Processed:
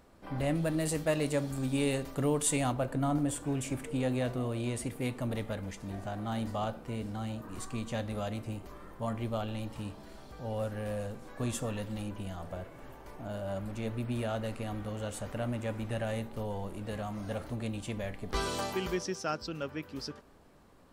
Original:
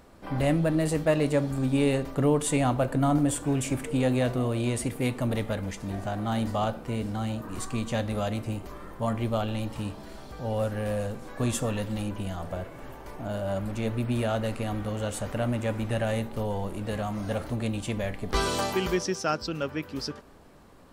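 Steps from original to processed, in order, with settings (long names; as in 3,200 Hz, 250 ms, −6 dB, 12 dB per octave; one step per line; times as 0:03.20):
0:00.55–0:02.72: high-shelf EQ 3,200 Hz +8.5 dB
level −6.5 dB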